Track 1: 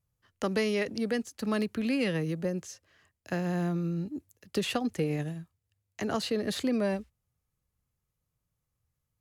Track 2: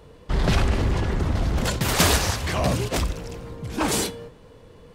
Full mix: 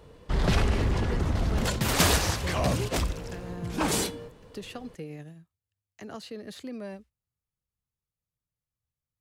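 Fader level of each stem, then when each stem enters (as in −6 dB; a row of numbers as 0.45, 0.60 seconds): −10.0, −3.5 decibels; 0.00, 0.00 seconds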